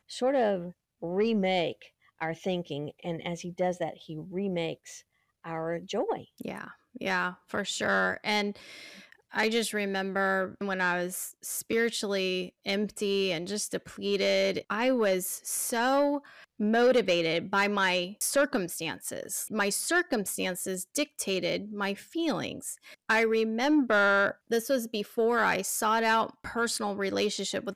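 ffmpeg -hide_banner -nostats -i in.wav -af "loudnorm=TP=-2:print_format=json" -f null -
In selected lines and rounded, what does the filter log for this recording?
"input_i" : "-28.8",
"input_tp" : "-17.0",
"input_lra" : "5.8",
"input_thresh" : "-39.2",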